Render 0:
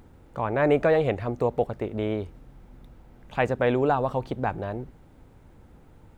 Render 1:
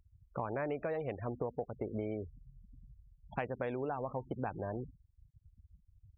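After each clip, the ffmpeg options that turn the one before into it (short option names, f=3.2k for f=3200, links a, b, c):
-af "afftfilt=real='re*gte(hypot(re,im),0.0224)':imag='im*gte(hypot(re,im),0.0224)':win_size=1024:overlap=0.75,highpass=f=55:p=1,acompressor=threshold=-31dB:ratio=10,volume=-2.5dB"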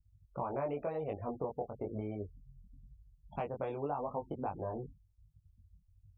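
-af "adynamicequalizer=threshold=0.00316:dfrequency=1000:dqfactor=0.94:tfrequency=1000:tqfactor=0.94:attack=5:release=100:ratio=0.375:range=3:mode=boostabove:tftype=bell,flanger=delay=19.5:depth=2.6:speed=0.95,equalizer=f=1.7k:t=o:w=0.59:g=-14,volume=1.5dB"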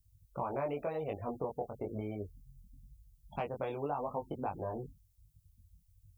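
-af "crystalizer=i=3.5:c=0"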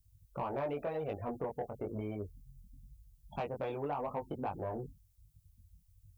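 -af "asoftclip=type=tanh:threshold=-29dB,volume=1dB"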